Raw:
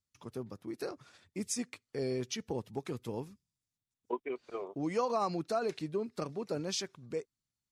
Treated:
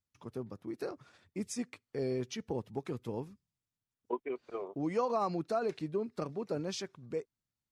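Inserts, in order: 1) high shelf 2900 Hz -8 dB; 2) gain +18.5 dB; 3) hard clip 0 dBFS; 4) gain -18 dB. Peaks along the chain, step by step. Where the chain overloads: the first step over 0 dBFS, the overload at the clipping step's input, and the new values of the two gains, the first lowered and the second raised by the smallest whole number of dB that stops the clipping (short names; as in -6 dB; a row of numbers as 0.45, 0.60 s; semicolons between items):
-21.5, -3.0, -3.0, -21.0 dBFS; no overload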